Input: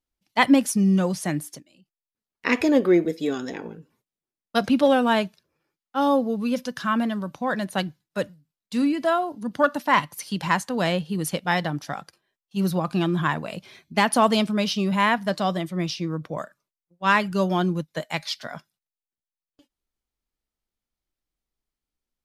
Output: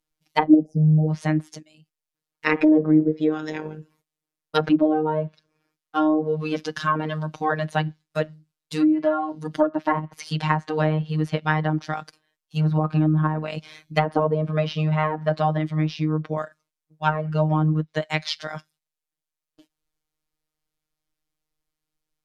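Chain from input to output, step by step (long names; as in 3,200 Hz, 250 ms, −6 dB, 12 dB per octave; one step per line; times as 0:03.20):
time-frequency box erased 0:00.48–0:01.09, 780–4,700 Hz
phases set to zero 155 Hz
treble cut that deepens with the level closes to 530 Hz, closed at −19 dBFS
level +5.5 dB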